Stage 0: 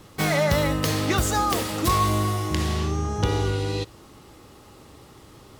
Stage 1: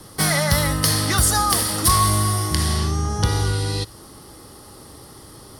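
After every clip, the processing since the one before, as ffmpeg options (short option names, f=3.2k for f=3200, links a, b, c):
-filter_complex "[0:a]superequalizer=12b=0.501:14b=2:16b=3.98,acrossover=split=220|800|6400[a][b][c][d];[b]acompressor=threshold=-37dB:ratio=6[e];[a][e][c][d]amix=inputs=4:normalize=0,volume=4.5dB"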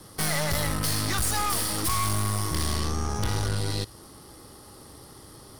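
-af "aeval=exprs='(tanh(15.8*val(0)+0.8)-tanh(0.8))/15.8':c=same"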